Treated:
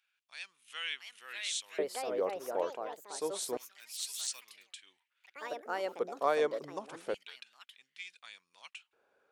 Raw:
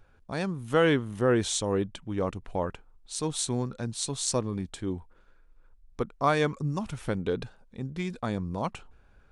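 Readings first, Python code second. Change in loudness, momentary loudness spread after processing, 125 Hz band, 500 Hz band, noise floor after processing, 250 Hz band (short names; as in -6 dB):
-7.5 dB, 18 LU, -31.0 dB, -6.0 dB, -82 dBFS, -18.5 dB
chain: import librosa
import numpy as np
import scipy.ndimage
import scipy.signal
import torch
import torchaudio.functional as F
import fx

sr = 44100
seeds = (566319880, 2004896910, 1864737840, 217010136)

y = fx.echo_pitch(x, sr, ms=748, semitones=4, count=3, db_per_echo=-6.0)
y = fx.filter_lfo_highpass(y, sr, shape='square', hz=0.28, low_hz=470.0, high_hz=2600.0, q=2.3)
y = y * librosa.db_to_amplitude(-8.5)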